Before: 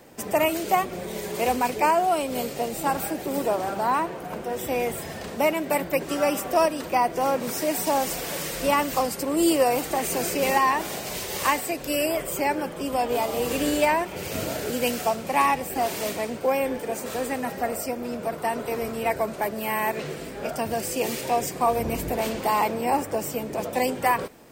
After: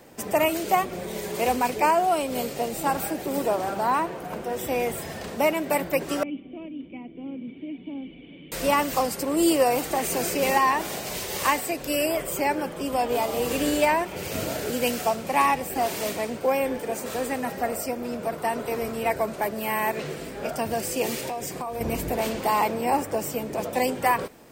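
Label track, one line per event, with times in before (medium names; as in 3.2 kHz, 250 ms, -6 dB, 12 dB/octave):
6.230000	8.520000	cascade formant filter i
21.190000	21.810000	compression 10:1, threshold -27 dBFS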